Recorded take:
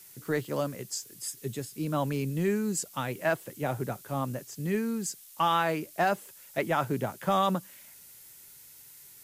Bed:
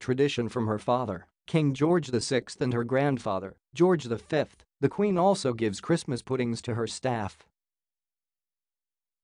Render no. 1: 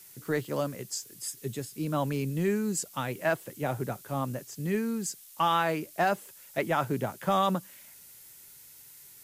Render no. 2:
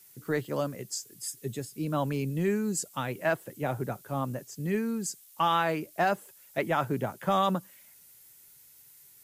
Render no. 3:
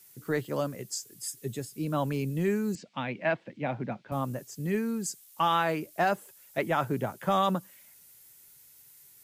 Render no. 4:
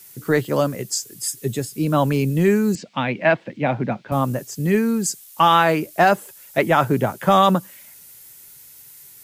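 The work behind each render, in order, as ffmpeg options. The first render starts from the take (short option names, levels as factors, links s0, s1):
-af anull
-af "afftdn=nr=6:nf=-52"
-filter_complex "[0:a]asettb=1/sr,asplit=3[s0][s1][s2];[s0]atrim=end=2.754[s3];[s1]atrim=start=2.75:end=4.12,asetpts=PTS-STARTPTS,afade=t=in:d=0.004:c=qsin,afade=t=out:st=1.366:d=0.004:c=qsin,highpass=130,equalizer=f=220:t=q:w=4:g=7,equalizer=f=410:t=q:w=4:g=-7,equalizer=f=1300:t=q:w=4:g=-5,equalizer=f=2300:t=q:w=4:g=6,lowpass=f=4100:w=0.5412,lowpass=f=4100:w=1.3066[s4];[s2]atrim=start=4.116[s5];[s3][s4]acrossfade=d=0.004:c1=hsin:c2=qsin[s6];[s6][s5]acrossfade=d=0.004:c1=qsin:c2=hsin"
-af "volume=3.55"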